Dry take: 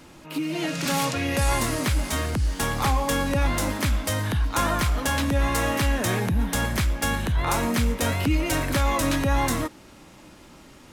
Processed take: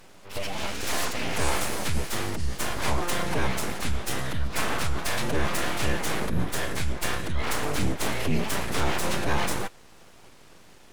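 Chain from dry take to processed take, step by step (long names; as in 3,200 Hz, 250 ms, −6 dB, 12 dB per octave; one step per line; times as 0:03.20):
phase-vocoder pitch shift with formants kept −8 semitones
full-wave rectification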